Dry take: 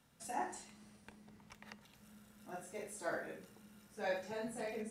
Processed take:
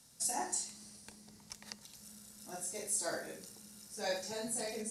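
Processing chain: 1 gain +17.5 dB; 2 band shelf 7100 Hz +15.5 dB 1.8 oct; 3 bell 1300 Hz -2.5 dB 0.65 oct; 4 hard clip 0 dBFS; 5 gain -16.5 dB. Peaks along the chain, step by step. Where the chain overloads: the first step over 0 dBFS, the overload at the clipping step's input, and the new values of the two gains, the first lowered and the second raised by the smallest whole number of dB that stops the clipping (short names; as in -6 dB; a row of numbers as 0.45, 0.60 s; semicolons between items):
-9.0, -4.5, -4.5, -4.5, -21.0 dBFS; no overload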